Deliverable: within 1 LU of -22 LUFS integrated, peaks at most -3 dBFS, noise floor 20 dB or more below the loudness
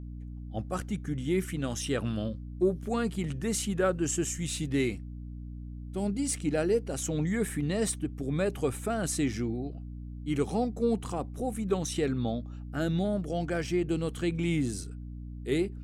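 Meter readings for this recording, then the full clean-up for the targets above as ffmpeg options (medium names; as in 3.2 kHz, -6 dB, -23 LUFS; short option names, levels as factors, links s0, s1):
hum 60 Hz; highest harmonic 300 Hz; hum level -38 dBFS; loudness -31.0 LUFS; peak level -15.5 dBFS; loudness target -22.0 LUFS
-> -af "bandreject=f=60:t=h:w=6,bandreject=f=120:t=h:w=6,bandreject=f=180:t=h:w=6,bandreject=f=240:t=h:w=6,bandreject=f=300:t=h:w=6"
-af "volume=2.82"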